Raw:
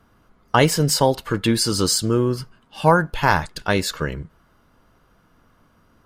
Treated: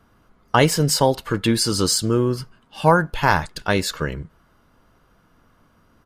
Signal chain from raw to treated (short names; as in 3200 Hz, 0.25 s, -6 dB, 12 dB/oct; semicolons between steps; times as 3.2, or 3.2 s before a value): downsampling 32000 Hz